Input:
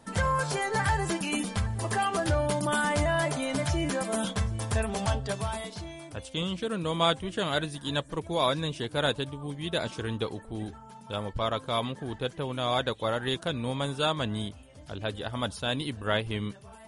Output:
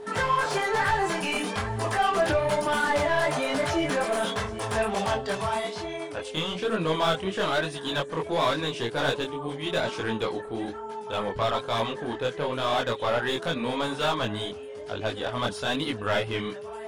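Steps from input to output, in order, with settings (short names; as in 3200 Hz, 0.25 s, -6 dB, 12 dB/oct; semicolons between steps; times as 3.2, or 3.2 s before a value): overdrive pedal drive 22 dB, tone 2200 Hz, clips at -11.5 dBFS; chorus voices 2, 1.1 Hz, delay 22 ms, depth 4.1 ms; whine 420 Hz -36 dBFS; gain -1 dB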